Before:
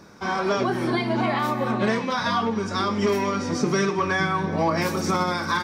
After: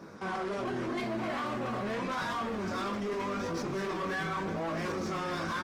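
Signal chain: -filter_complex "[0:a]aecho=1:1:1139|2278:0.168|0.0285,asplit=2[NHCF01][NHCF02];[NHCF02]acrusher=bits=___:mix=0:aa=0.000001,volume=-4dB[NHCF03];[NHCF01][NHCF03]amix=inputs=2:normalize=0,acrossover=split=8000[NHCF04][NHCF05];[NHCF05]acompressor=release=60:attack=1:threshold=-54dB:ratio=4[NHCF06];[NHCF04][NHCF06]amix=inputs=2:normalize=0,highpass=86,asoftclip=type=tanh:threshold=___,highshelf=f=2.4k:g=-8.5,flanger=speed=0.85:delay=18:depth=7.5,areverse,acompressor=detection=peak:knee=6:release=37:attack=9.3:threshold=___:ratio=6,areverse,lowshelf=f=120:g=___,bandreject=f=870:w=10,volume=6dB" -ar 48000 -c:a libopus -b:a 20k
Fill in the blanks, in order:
4, -23.5dB, -39dB, -7.5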